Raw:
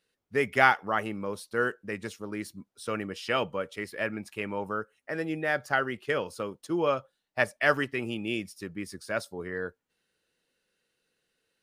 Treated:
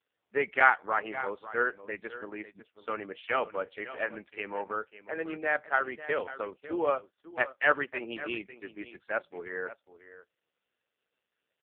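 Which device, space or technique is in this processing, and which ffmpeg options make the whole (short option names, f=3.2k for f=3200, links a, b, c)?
satellite phone: -af "highpass=400,lowpass=3.2k,aecho=1:1:548:0.188,volume=1dB" -ar 8000 -c:a libopencore_amrnb -b:a 4750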